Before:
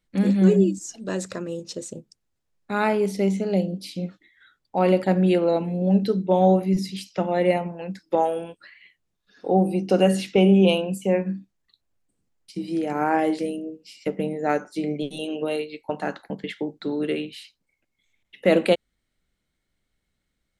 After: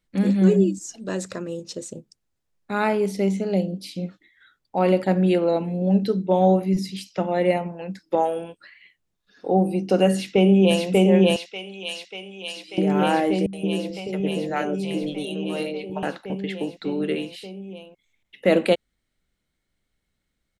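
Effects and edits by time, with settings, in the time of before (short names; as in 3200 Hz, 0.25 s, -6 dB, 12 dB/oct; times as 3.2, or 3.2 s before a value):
10.11–10.86 echo throw 0.59 s, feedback 80%, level 0 dB
11.36–12.78 band-pass 4600 Hz, Q 0.65
13.46–16.03 three bands offset in time lows, highs, mids 70/170 ms, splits 150/570 Hz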